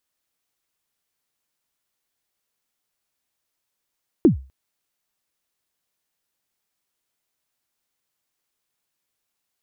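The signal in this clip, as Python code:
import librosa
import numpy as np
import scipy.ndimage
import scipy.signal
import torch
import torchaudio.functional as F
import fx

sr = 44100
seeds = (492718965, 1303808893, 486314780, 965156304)

y = fx.drum_kick(sr, seeds[0], length_s=0.25, level_db=-6.0, start_hz=380.0, end_hz=66.0, sweep_ms=117.0, decay_s=0.33, click=False)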